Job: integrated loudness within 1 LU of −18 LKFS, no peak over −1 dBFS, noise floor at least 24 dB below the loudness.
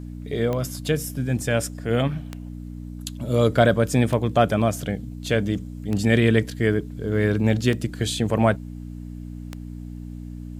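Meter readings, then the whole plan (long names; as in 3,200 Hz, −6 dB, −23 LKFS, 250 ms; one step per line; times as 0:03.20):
number of clicks 6; mains hum 60 Hz; hum harmonics up to 300 Hz; level of the hum −33 dBFS; integrated loudness −23.0 LKFS; sample peak −3.5 dBFS; target loudness −18.0 LKFS
→ click removal
hum removal 60 Hz, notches 5
level +5 dB
brickwall limiter −1 dBFS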